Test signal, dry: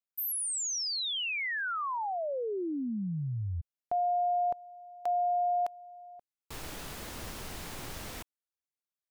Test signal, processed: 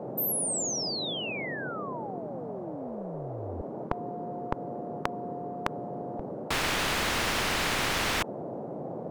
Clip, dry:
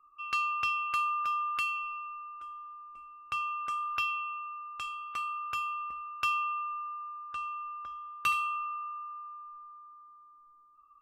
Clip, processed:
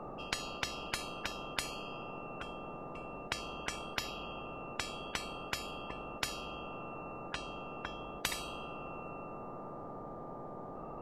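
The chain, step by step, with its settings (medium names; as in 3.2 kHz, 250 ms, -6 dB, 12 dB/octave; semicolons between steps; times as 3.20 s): RIAA curve playback; band noise 130–680 Hz -59 dBFS; spectrum-flattening compressor 10:1; trim +5 dB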